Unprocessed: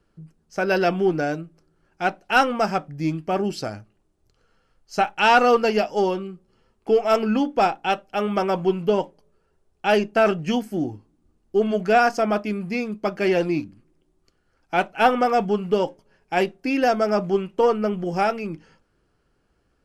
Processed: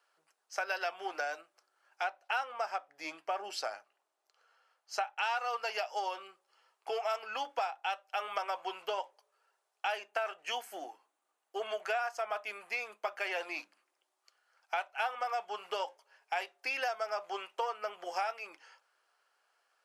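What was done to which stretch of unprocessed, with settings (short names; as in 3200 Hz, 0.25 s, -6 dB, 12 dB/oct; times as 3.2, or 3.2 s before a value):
2.04–5.23 tilt -1.5 dB/oct
9.92–13.56 bell 5000 Hz -5.5 dB 0.52 oct
whole clip: HPF 700 Hz 24 dB/oct; compressor 6:1, threshold -32 dBFS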